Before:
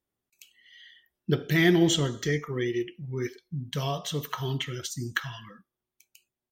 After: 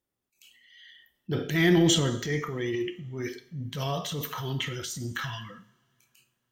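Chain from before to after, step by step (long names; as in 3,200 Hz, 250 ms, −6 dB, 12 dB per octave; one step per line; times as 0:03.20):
transient designer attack −8 dB, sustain +6 dB
coupled-rooms reverb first 0.56 s, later 3.4 s, from −26 dB, DRR 10 dB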